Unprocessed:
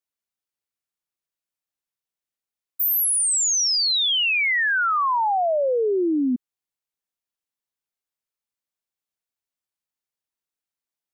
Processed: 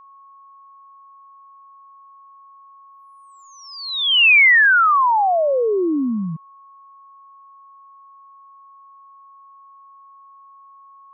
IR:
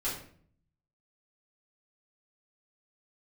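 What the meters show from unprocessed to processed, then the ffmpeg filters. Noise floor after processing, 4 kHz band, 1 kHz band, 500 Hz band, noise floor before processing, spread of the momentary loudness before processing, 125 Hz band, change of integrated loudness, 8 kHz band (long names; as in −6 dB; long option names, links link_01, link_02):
−47 dBFS, +1.5 dB, +5.5 dB, +2.5 dB, below −85 dBFS, 5 LU, can't be measured, +5.5 dB, below −30 dB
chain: -af "crystalizer=i=7.5:c=0,highpass=frequency=300:width_type=q:width=0.5412,highpass=frequency=300:width_type=q:width=1.307,lowpass=frequency=2800:width_type=q:width=0.5176,lowpass=frequency=2800:width_type=q:width=0.7071,lowpass=frequency=2800:width_type=q:width=1.932,afreqshift=-89,aeval=exprs='val(0)+0.00562*sin(2*PI*1100*n/s)':channel_layout=same,volume=1.5dB"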